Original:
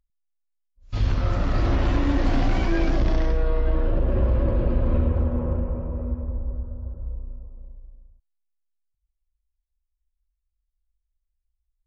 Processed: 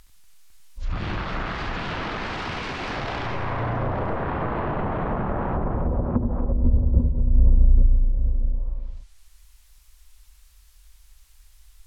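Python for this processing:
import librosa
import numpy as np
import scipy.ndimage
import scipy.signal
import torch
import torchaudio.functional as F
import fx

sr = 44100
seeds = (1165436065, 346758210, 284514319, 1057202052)

y = fx.tracing_dist(x, sr, depth_ms=0.055)
y = fx.fold_sine(y, sr, drive_db=10, ceiling_db=-13.0)
y = fx.curve_eq(y, sr, hz=(510.0, 960.0, 4400.0), db=(0, 8, 12))
y = fx.over_compress(y, sr, threshold_db=-22.0, ratio=-0.5)
y = fx.echo_multitap(y, sr, ms=(68, 85, 94, 239, 503, 837), db=(-10.5, -17.5, -9.0, -11.5, -7.0, -5.5))
y = fx.env_lowpass_down(y, sr, base_hz=370.0, full_db=-17.0)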